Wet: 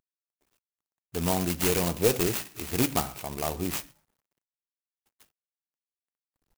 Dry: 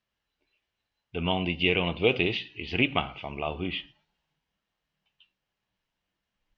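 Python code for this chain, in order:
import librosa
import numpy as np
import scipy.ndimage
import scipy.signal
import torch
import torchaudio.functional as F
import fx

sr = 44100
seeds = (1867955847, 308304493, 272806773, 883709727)

y = fx.cvsd(x, sr, bps=32000)
y = fx.brickwall_lowpass(y, sr, high_hz=3600.0)
y = fx.clock_jitter(y, sr, seeds[0], jitter_ms=0.1)
y = F.gain(torch.from_numpy(y), 1.5).numpy()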